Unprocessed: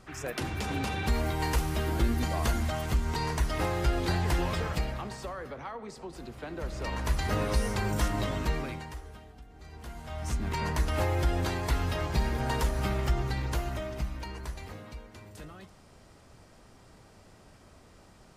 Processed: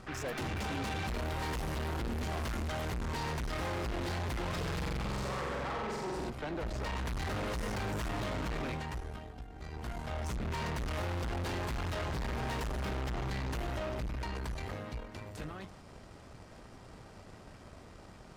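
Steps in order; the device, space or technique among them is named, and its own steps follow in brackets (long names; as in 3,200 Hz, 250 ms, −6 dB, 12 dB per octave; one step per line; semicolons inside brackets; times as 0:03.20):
0:04.52–0:06.30: flutter between parallel walls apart 7.8 metres, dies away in 1.5 s
tube preamp driven hard (tube saturation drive 42 dB, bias 0.75; high-shelf EQ 5,900 Hz −8 dB)
level +8 dB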